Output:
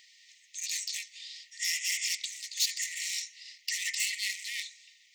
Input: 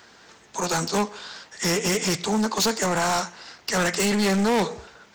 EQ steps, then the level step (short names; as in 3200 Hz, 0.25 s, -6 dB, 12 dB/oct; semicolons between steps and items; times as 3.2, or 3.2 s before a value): brick-wall FIR high-pass 1800 Hz; -4.0 dB